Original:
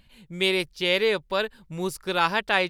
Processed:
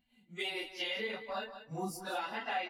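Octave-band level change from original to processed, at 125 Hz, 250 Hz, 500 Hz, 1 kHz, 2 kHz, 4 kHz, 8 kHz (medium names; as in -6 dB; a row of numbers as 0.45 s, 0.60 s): -12.5 dB, -13.5 dB, -16.0 dB, -10.5 dB, -13.5 dB, -13.0 dB, -9.5 dB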